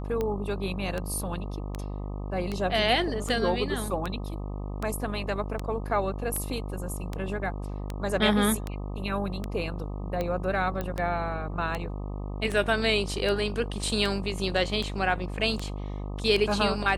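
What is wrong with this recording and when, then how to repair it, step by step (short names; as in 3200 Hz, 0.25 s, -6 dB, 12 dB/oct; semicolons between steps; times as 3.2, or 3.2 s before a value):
buzz 50 Hz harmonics 25 -34 dBFS
tick 78 rpm -17 dBFS
10.81 pop -18 dBFS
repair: de-click; de-hum 50 Hz, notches 25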